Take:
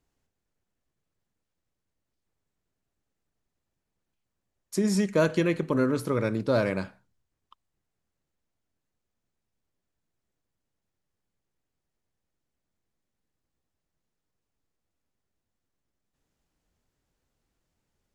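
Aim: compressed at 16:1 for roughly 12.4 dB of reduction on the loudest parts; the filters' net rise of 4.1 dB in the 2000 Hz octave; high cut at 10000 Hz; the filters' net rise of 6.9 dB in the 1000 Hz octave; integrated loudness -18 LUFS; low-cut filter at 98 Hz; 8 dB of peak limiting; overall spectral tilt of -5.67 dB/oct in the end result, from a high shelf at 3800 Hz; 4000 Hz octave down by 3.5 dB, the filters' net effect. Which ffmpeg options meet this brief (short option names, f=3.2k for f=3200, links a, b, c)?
-af "highpass=98,lowpass=10k,equalizer=f=1k:t=o:g=8,equalizer=f=2k:t=o:g=3,highshelf=f=3.8k:g=3.5,equalizer=f=4k:t=o:g=-8.5,acompressor=threshold=-27dB:ratio=16,volume=17.5dB,alimiter=limit=-6dB:level=0:latency=1"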